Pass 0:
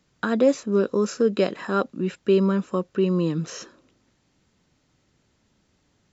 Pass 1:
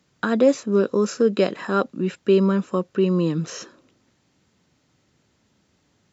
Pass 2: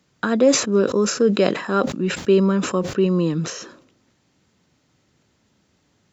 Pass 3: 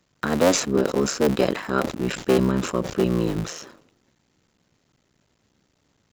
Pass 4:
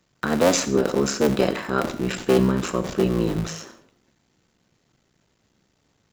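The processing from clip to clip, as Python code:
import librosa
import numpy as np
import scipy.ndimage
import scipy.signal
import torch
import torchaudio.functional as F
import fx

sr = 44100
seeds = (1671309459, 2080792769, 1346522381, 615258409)

y1 = scipy.signal.sosfilt(scipy.signal.butter(2, 73.0, 'highpass', fs=sr, output='sos'), x)
y1 = y1 * 10.0 ** (2.0 / 20.0)
y2 = fx.sustainer(y1, sr, db_per_s=91.0)
y2 = y2 * 10.0 ** (1.0 / 20.0)
y3 = fx.cycle_switch(y2, sr, every=3, mode='muted')
y3 = y3 * 10.0 ** (-1.5 / 20.0)
y4 = fx.rev_gated(y3, sr, seeds[0], gate_ms=210, shape='falling', drr_db=9.5)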